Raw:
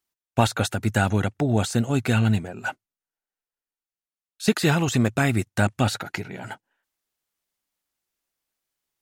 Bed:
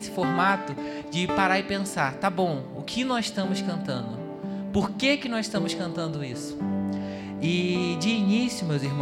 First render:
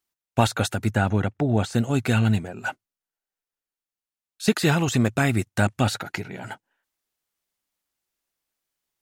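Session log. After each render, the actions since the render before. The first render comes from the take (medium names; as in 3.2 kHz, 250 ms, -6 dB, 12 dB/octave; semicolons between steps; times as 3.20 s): 0.90–1.73 s: treble shelf 3.3 kHz -> 5.3 kHz -11.5 dB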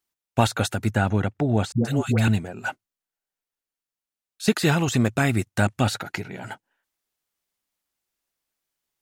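1.72–2.28 s: phase dispersion highs, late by 128 ms, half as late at 580 Hz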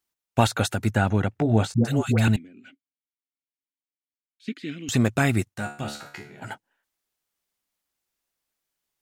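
1.31–1.84 s: doubling 18 ms -8.5 dB; 2.36–4.89 s: vowel filter i; 5.54–6.42 s: feedback comb 72 Hz, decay 0.42 s, mix 90%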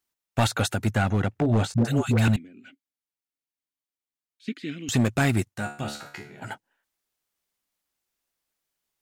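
hard clipper -15 dBFS, distortion -14 dB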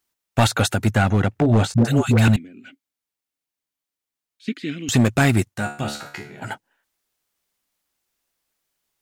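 trim +5.5 dB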